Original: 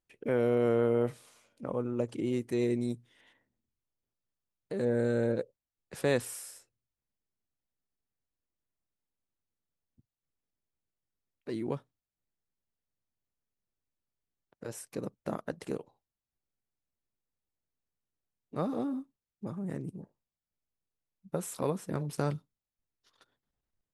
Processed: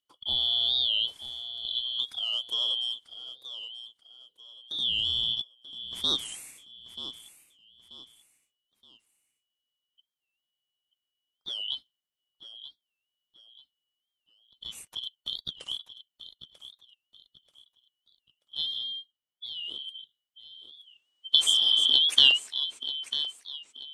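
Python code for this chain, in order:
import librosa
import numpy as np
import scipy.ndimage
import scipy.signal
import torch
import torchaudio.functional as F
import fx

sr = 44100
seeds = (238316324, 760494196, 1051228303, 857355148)

y = fx.band_shuffle(x, sr, order='2413')
y = fx.high_shelf(y, sr, hz=4300.0, db=-6.5, at=(18.78, 19.88))
y = fx.spec_box(y, sr, start_s=20.75, length_s=1.89, low_hz=230.0, high_hz=9400.0, gain_db=12)
y = fx.echo_feedback(y, sr, ms=934, feedback_pct=33, wet_db=-12)
y = fx.spec_repair(y, sr, seeds[0], start_s=21.5, length_s=0.36, low_hz=840.0, high_hz=4600.0, source='after')
y = fx.record_warp(y, sr, rpm=45.0, depth_cents=160.0)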